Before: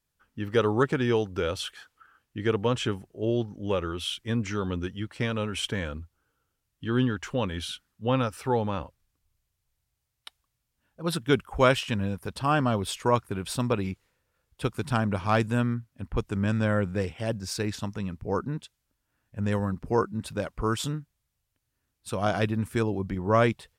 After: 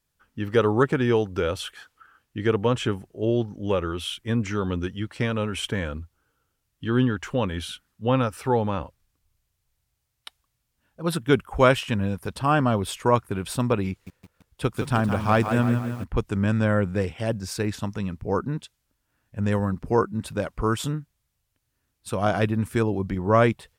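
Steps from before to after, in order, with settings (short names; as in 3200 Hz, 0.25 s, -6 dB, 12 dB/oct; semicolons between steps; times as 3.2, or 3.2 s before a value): dynamic EQ 4800 Hz, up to -5 dB, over -45 dBFS, Q 0.85; 13.9–16.04 lo-fi delay 0.166 s, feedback 55%, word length 8-bit, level -8 dB; gain +3.5 dB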